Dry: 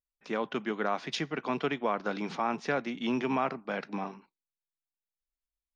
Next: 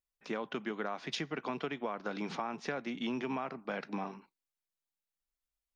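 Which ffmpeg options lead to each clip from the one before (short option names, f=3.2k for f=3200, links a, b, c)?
-af "acompressor=threshold=-33dB:ratio=6"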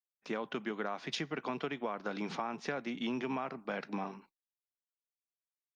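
-af "agate=range=-33dB:threshold=-55dB:ratio=3:detection=peak"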